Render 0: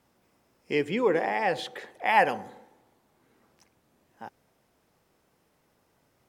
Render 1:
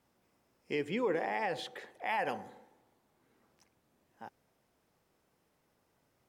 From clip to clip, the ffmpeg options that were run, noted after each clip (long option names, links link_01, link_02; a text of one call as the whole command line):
ffmpeg -i in.wav -af "alimiter=limit=-17dB:level=0:latency=1:release=58,volume=-6dB" out.wav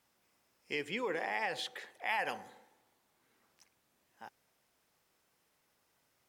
ffmpeg -i in.wav -af "tiltshelf=frequency=970:gain=-6,volume=-1.5dB" out.wav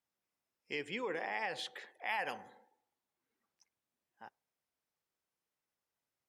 ffmpeg -i in.wav -af "afftdn=noise_reduction=14:noise_floor=-63,volume=-2.5dB" out.wav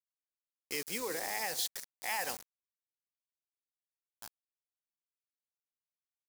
ffmpeg -i in.wav -af "aeval=exprs='val(0)*gte(abs(val(0)),0.00562)':channel_layout=same,aexciter=amount=4.6:drive=6.7:freq=4300" out.wav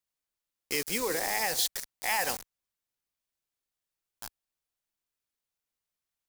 ffmpeg -i in.wav -af "lowshelf=frequency=69:gain=9.5,volume=6.5dB" out.wav